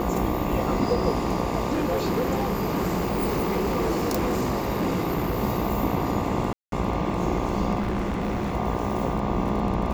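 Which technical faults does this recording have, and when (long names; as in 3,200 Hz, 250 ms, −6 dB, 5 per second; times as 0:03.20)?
mains buzz 60 Hz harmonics 20 −30 dBFS
surface crackle 19 per second −31 dBFS
0:01.72–0:05.43: clipping −20 dBFS
0:06.53–0:06.72: drop-out 192 ms
0:07.79–0:08.55: clipping −22.5 dBFS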